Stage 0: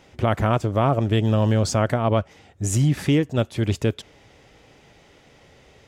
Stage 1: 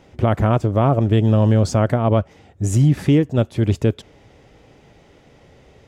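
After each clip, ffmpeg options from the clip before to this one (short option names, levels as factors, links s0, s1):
-af "tiltshelf=f=970:g=4,volume=1.12"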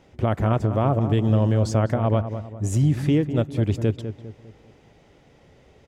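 -filter_complex "[0:a]asplit=2[s0][s1];[s1]adelay=201,lowpass=f=1500:p=1,volume=0.335,asplit=2[s2][s3];[s3]adelay=201,lowpass=f=1500:p=1,volume=0.43,asplit=2[s4][s5];[s5]adelay=201,lowpass=f=1500:p=1,volume=0.43,asplit=2[s6][s7];[s7]adelay=201,lowpass=f=1500:p=1,volume=0.43,asplit=2[s8][s9];[s9]adelay=201,lowpass=f=1500:p=1,volume=0.43[s10];[s0][s2][s4][s6][s8][s10]amix=inputs=6:normalize=0,volume=0.562"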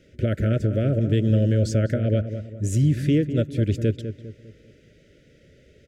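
-af "asuperstop=centerf=930:order=12:qfactor=1.2"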